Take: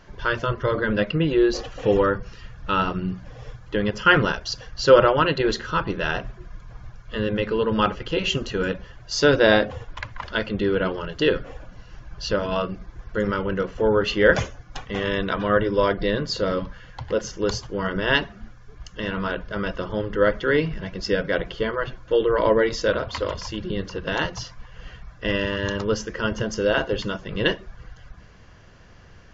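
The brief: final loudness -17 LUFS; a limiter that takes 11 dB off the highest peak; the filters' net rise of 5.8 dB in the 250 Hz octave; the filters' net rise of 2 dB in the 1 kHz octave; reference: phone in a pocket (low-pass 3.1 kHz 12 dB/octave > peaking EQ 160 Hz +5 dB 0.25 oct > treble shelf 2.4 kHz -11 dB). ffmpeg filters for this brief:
-af "equalizer=f=250:t=o:g=7.5,equalizer=f=1000:t=o:g=5,alimiter=limit=0.316:level=0:latency=1,lowpass=3100,equalizer=f=160:t=o:w=0.25:g=5,highshelf=f=2400:g=-11,volume=2"

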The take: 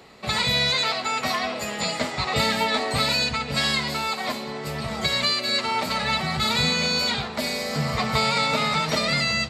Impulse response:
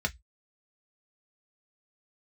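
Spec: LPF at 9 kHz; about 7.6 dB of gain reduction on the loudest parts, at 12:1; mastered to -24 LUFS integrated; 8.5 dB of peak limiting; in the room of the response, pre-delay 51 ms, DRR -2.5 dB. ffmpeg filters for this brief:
-filter_complex "[0:a]lowpass=9000,acompressor=threshold=0.0501:ratio=12,alimiter=limit=0.0631:level=0:latency=1,asplit=2[s0][s1];[1:a]atrim=start_sample=2205,adelay=51[s2];[s1][s2]afir=irnorm=-1:irlink=0,volume=0.631[s3];[s0][s3]amix=inputs=2:normalize=0,volume=1.41"

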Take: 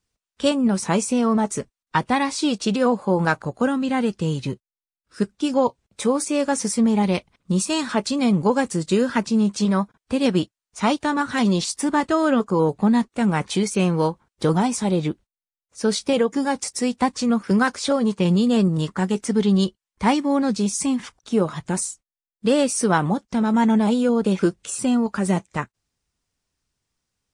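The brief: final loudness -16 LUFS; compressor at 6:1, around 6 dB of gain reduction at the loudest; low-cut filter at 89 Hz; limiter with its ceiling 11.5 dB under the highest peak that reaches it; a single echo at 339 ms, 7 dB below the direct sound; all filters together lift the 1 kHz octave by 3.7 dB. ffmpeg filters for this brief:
-af "highpass=89,equalizer=f=1000:t=o:g=4.5,acompressor=threshold=0.126:ratio=6,alimiter=limit=0.141:level=0:latency=1,aecho=1:1:339:0.447,volume=3.16"

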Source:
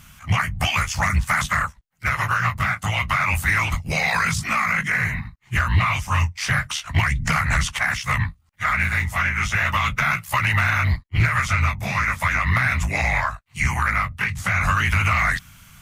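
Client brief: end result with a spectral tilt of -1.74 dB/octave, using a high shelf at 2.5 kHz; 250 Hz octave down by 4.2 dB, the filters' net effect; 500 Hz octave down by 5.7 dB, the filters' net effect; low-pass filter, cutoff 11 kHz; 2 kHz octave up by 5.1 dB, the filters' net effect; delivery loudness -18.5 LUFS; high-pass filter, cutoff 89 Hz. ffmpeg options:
-af "highpass=89,lowpass=11000,equalizer=f=250:t=o:g=-6,equalizer=f=500:t=o:g=-7.5,equalizer=f=2000:t=o:g=8.5,highshelf=f=2500:g=-5,volume=0.944"

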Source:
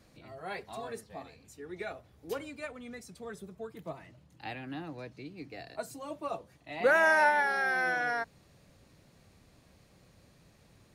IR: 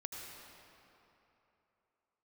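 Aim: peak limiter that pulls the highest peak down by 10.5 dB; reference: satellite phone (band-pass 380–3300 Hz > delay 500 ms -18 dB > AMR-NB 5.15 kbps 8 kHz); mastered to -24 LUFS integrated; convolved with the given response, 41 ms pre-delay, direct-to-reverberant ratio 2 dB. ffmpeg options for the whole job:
-filter_complex "[0:a]alimiter=level_in=1.12:limit=0.0631:level=0:latency=1,volume=0.891,asplit=2[s0][s1];[1:a]atrim=start_sample=2205,adelay=41[s2];[s1][s2]afir=irnorm=-1:irlink=0,volume=0.891[s3];[s0][s3]amix=inputs=2:normalize=0,highpass=380,lowpass=3300,aecho=1:1:500:0.126,volume=5.96" -ar 8000 -c:a libopencore_amrnb -b:a 5150

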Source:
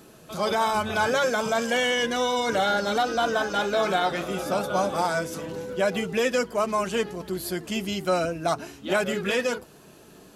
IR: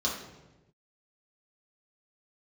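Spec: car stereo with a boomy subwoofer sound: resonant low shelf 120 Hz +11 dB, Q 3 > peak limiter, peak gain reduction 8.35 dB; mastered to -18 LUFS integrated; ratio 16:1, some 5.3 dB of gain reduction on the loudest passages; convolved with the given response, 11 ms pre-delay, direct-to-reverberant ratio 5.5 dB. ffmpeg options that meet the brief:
-filter_complex "[0:a]acompressor=threshold=0.0631:ratio=16,asplit=2[s0][s1];[1:a]atrim=start_sample=2205,adelay=11[s2];[s1][s2]afir=irnorm=-1:irlink=0,volume=0.224[s3];[s0][s3]amix=inputs=2:normalize=0,lowshelf=f=120:t=q:w=3:g=11,volume=4.47,alimiter=limit=0.376:level=0:latency=1"

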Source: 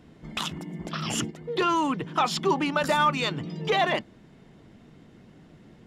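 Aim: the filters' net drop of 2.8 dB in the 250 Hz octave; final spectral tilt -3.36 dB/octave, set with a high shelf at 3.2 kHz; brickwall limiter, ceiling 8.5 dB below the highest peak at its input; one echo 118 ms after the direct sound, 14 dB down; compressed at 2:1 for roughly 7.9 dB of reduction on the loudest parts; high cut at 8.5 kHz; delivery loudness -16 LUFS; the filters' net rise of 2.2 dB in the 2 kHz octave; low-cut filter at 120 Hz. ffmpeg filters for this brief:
-af "highpass=120,lowpass=8500,equalizer=f=250:t=o:g=-3.5,equalizer=f=2000:t=o:g=5,highshelf=f=3200:g=-6,acompressor=threshold=0.0224:ratio=2,alimiter=level_in=1.5:limit=0.0631:level=0:latency=1,volume=0.668,aecho=1:1:118:0.2,volume=11.2"

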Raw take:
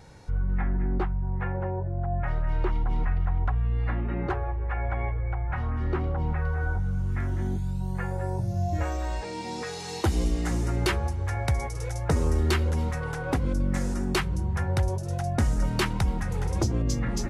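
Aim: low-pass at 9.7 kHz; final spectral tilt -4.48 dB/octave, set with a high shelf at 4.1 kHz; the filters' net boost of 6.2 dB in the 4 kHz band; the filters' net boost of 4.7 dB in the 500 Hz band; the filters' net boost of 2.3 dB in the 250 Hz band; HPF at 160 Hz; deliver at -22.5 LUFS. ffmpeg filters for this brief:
-af "highpass=160,lowpass=9700,equalizer=f=250:t=o:g=3,equalizer=f=500:t=o:g=5,equalizer=f=4000:t=o:g=3,highshelf=f=4100:g=8,volume=2.37"

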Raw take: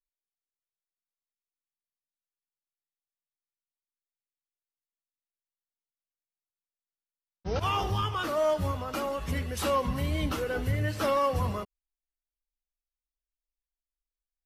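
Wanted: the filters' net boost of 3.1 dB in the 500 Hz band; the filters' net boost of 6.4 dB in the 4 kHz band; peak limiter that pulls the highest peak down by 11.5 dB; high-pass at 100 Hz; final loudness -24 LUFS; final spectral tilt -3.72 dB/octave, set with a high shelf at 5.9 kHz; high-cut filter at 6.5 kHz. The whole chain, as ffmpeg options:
-af "highpass=100,lowpass=6500,equalizer=f=500:t=o:g=3.5,equalizer=f=4000:t=o:g=8,highshelf=f=5900:g=4.5,volume=2.82,alimiter=limit=0.168:level=0:latency=1"

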